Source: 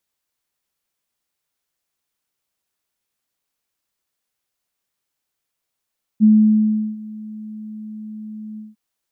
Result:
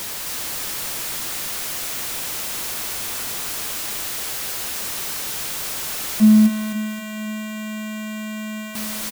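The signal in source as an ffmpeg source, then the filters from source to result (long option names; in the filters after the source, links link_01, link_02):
-f lavfi -i "aevalsrc='0.447*sin(2*PI*215*t)':duration=2.553:sample_rate=44100,afade=type=in:duration=0.036,afade=type=out:start_time=0.036:duration=0.727:silence=0.075,afade=type=out:start_time=2.38:duration=0.173"
-af "aeval=exprs='val(0)+0.5*0.0708*sgn(val(0))':channel_layout=same,aecho=1:1:263|526|789|1052|1315|1578:0.668|0.314|0.148|0.0694|0.0326|0.0153"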